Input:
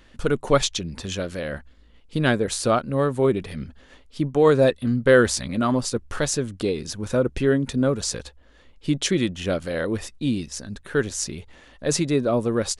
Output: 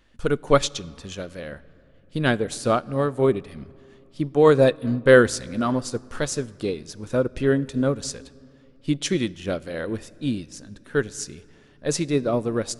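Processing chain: on a send at -16 dB: reverb RT60 3.1 s, pre-delay 4 ms; on the sum: upward expander 1.5:1, over -33 dBFS; gain +2.5 dB

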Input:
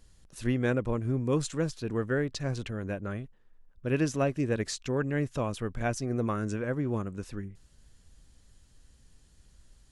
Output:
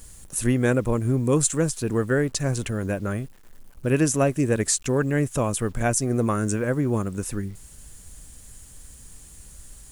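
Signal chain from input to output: resonant high shelf 6200 Hz +11 dB, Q 1.5; in parallel at -0.5 dB: compressor 12:1, threshold -40 dBFS, peak gain reduction 18.5 dB; on the sum: bit-crush 10-bit; gain +5.5 dB

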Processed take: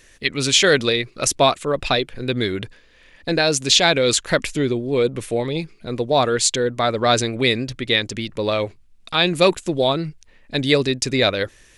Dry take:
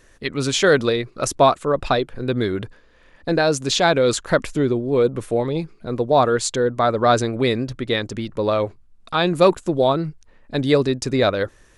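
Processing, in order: resonant high shelf 1700 Hz +7 dB, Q 1.5; gain -1 dB

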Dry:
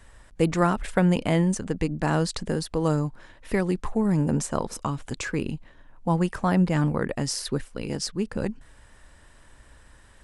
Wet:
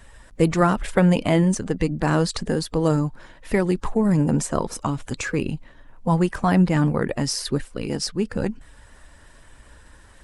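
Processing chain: bin magnitudes rounded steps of 15 dB; gain +4 dB

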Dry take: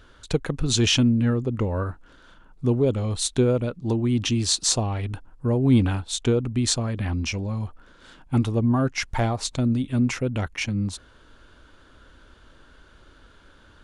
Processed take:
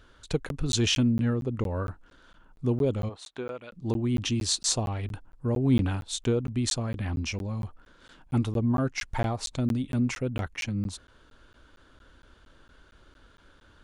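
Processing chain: 3.08–3.71 band-pass 670 Hz -> 2500 Hz, Q 0.9; crackling interface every 0.23 s, samples 512, zero, from 0.49; gain -4.5 dB

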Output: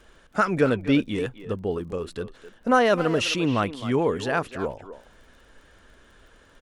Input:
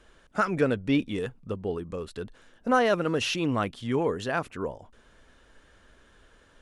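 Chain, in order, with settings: speakerphone echo 0.26 s, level -12 dB; crackle 20/s -49 dBFS; gain +3.5 dB

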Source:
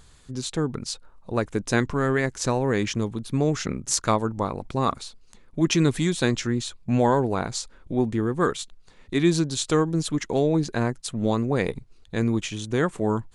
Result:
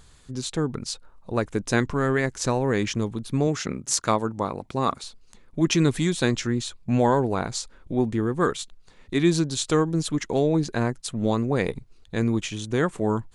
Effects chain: 3.47–5.04 HPF 120 Hz 6 dB/oct

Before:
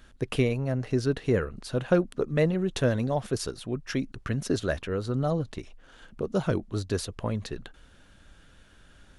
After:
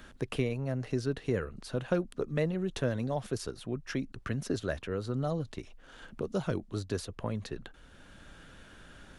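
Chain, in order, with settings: three-band squash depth 40%; gain -5.5 dB

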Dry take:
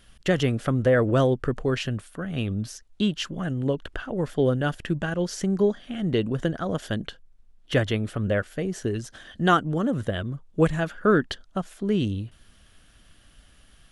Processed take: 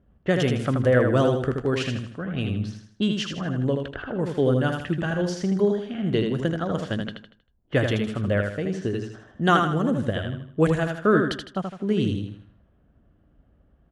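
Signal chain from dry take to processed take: low-pass opened by the level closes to 530 Hz, open at -21.5 dBFS; HPF 54 Hz; feedback echo 79 ms, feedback 38%, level -5 dB

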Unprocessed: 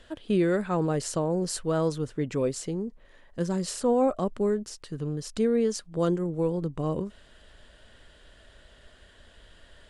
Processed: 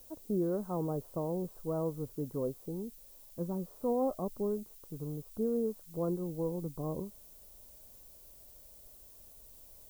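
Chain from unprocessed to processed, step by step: steep low-pass 1100 Hz 36 dB/oct; added noise violet -48 dBFS; gain -8 dB

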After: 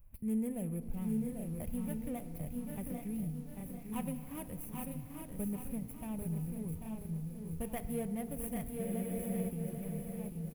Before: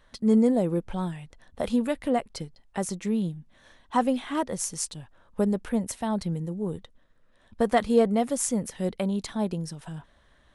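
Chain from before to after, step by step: median filter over 25 samples; EQ curve 110 Hz 0 dB, 310 Hz -19 dB, 1500 Hz -19 dB, 2400 Hz -9 dB, 4200 Hz -26 dB, 7500 Hz -14 dB, 11000 Hz +10 dB; in parallel at +0.5 dB: compressor 16:1, threshold -50 dBFS, peak gain reduction 20.5 dB; on the sum: feedback echo 0.829 s, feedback 16%, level -6 dB; FDN reverb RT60 2.7 s, low-frequency decay 1.45×, high-frequency decay 0.55×, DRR 11.5 dB; spectral freeze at 8.83, 0.65 s; lo-fi delay 0.792 s, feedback 35%, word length 10-bit, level -6 dB; gain -2 dB

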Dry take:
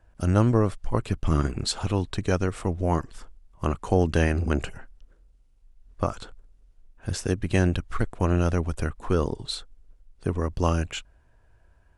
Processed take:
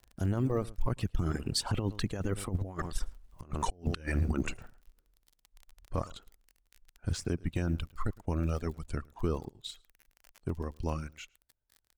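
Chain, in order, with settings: G.711 law mismatch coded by A; Doppler pass-by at 3.35, 23 m/s, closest 9.9 m; on a send: echo 0.108 s -16 dB; on the sum: crackle 30/s -51 dBFS; low shelf 320 Hz +7 dB; reverb removal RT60 1.6 s; low shelf 160 Hz -3 dB; negative-ratio compressor -36 dBFS, ratio -0.5; limiter -28 dBFS, peak gain reduction 11 dB; gain +8.5 dB

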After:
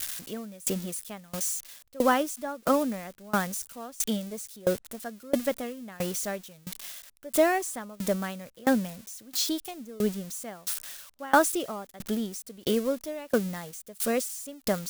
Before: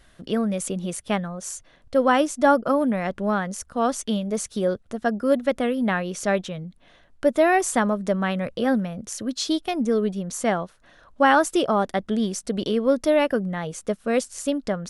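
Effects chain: switching spikes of -21 dBFS; dB-ramp tremolo decaying 1.5 Hz, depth 25 dB

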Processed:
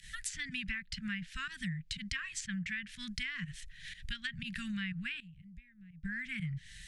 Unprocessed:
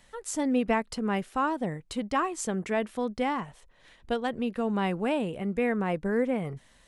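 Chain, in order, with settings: pump 122 bpm, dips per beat 1, -16 dB, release 80 ms; Chebyshev band-stop 170–1700 Hz, order 4; treble ducked by the level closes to 2800 Hz, closed at -34 dBFS; compressor 6:1, threshold -47 dBFS, peak gain reduction 14 dB; 5.2–6.04 passive tone stack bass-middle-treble 10-0-1; gain +11 dB

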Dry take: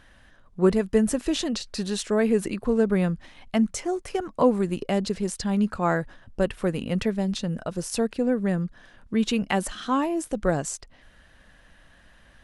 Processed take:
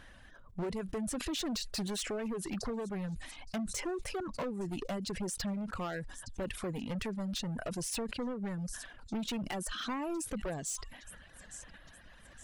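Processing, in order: on a send: thin delay 0.865 s, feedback 38%, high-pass 5300 Hz, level -14 dB; on the sum: compressor 16:1, threshold -28 dBFS, peak gain reduction 15.5 dB; hard clip -32.5 dBFS, distortion -8 dB; reverb removal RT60 0.81 s; sustainer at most 66 dB/s

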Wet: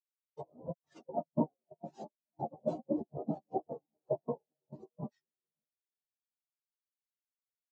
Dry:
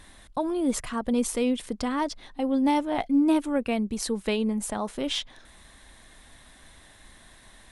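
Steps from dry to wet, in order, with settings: reverb removal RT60 1.1 s; LPF 1400 Hz 12 dB/oct; reverb removal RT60 1.1 s; Bessel high-pass 650 Hz, order 8; compressor 4:1, threshold -42 dBFS, peak gain reduction 13 dB; noise vocoder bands 2; doubler 13 ms -6 dB; diffused feedback echo 0.532 s, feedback 58%, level -13.5 dB; spectral expander 4:1; gain +9 dB

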